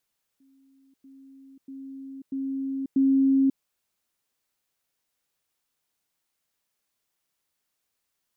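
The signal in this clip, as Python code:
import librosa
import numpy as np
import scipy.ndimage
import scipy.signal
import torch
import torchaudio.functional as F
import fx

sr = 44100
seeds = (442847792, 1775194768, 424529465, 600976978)

y = fx.level_ladder(sr, hz=270.0, from_db=-57.0, step_db=10.0, steps=5, dwell_s=0.54, gap_s=0.1)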